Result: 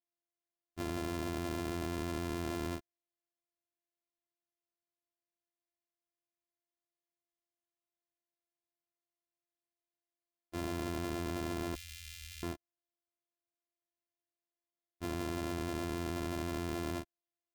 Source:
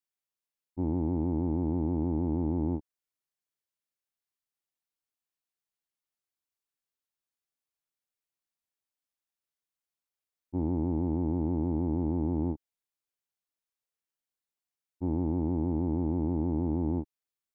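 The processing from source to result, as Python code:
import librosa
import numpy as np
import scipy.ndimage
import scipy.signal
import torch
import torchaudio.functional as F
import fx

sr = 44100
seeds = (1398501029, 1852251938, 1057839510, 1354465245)

y = np.r_[np.sort(x[:len(x) // 128 * 128].reshape(-1, 128), axis=1).ravel(), x[len(x) // 128 * 128:]]
y = fx.cheby2_bandstop(y, sr, low_hz=180.0, high_hz=830.0, order=4, stop_db=60, at=(11.75, 12.43))
y = y * librosa.db_to_amplitude(-8.5)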